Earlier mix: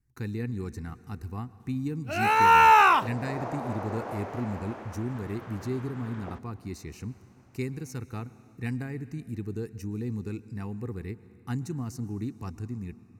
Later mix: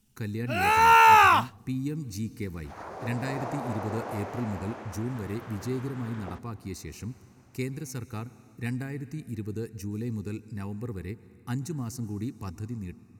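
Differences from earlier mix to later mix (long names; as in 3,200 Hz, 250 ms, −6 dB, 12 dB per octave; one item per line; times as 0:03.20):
first sound: entry −1.60 s
master: add high-shelf EQ 4,200 Hz +6.5 dB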